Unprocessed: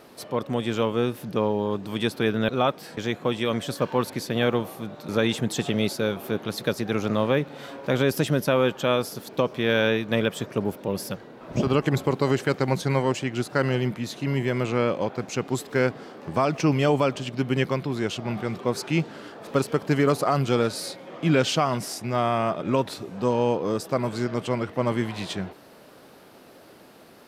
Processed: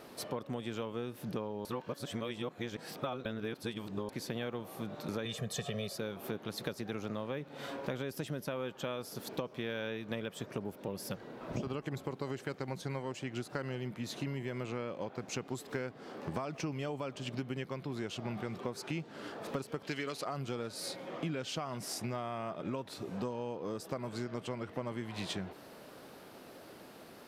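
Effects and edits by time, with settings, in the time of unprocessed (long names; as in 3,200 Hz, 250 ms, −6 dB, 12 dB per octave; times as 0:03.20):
0:01.65–0:04.09: reverse
0:05.25–0:05.98: comb filter 1.7 ms, depth 93%
0:19.83–0:20.25: meter weighting curve D
whole clip: downward compressor 10 to 1, threshold −32 dBFS; level −2.5 dB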